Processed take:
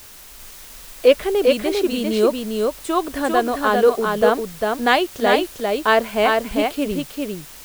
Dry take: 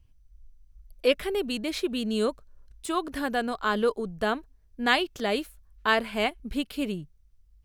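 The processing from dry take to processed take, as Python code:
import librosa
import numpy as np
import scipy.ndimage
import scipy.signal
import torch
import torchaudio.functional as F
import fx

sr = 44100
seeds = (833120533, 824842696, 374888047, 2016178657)

p1 = fx.peak_eq(x, sr, hz=590.0, db=8.0, octaves=1.9)
p2 = fx.quant_dither(p1, sr, seeds[0], bits=6, dither='triangular')
p3 = p1 + (p2 * librosa.db_to_amplitude(-5.0))
p4 = p3 + 10.0 ** (-3.5 / 20.0) * np.pad(p3, (int(399 * sr / 1000.0), 0))[:len(p3)]
y = p4 * librosa.db_to_amplitude(-1.0)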